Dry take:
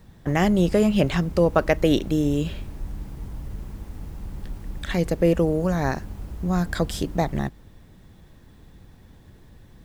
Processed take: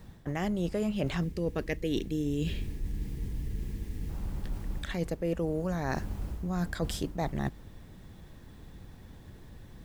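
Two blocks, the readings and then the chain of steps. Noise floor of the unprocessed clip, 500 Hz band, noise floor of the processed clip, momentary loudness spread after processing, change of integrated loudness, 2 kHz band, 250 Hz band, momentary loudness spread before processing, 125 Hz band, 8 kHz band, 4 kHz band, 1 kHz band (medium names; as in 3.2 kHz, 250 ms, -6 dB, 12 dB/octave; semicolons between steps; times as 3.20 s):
-50 dBFS, -11.5 dB, -50 dBFS, 20 LU, -11.0 dB, -9.0 dB, -10.0 dB, 18 LU, -8.0 dB, -7.5 dB, -8.0 dB, -10.5 dB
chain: time-frequency box 1.24–4.09 s, 500–1600 Hz -11 dB; reverse; compression 6:1, threshold -28 dBFS, peak gain reduction 13.5 dB; reverse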